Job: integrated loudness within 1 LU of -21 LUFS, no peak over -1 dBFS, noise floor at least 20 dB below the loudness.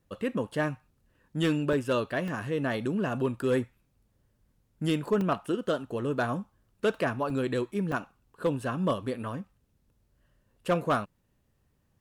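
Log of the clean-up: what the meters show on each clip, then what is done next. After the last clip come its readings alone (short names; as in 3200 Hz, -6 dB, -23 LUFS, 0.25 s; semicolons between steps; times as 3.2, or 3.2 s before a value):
clipped 0.3%; flat tops at -19.0 dBFS; dropouts 5; longest dropout 2.2 ms; loudness -30.0 LUFS; peak -19.0 dBFS; loudness target -21.0 LUFS
-> clip repair -19 dBFS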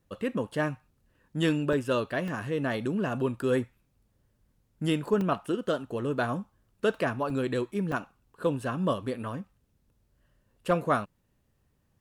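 clipped 0.0%; dropouts 5; longest dropout 2.2 ms
-> interpolate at 1.73/2.28/5.21/7.3/7.92, 2.2 ms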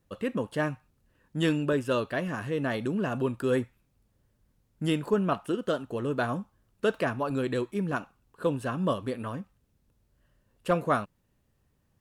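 dropouts 0; loudness -30.0 LUFS; peak -12.5 dBFS; loudness target -21.0 LUFS
-> gain +9 dB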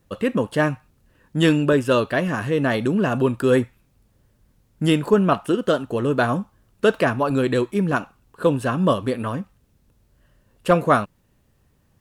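loudness -21.0 LUFS; peak -3.5 dBFS; noise floor -63 dBFS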